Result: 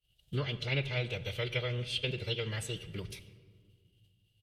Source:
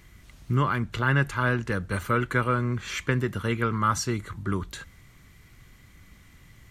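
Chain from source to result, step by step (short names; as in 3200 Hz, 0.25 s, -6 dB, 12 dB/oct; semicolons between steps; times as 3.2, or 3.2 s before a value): time stretch by phase-locked vocoder 0.66×; expander -41 dBFS; EQ curve 130 Hz 0 dB, 250 Hz -18 dB, 480 Hz 0 dB, 770 Hz -3 dB, 1100 Hz -18 dB, 2200 Hz +12 dB, 3900 Hz 0 dB, 8500 Hz +6 dB; formant shift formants +6 st; treble ducked by the level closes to 850 Hz, closed at -14.5 dBFS; speakerphone echo 0.14 s, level -19 dB; shoebox room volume 2900 m³, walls mixed, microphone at 0.5 m; gain -7.5 dB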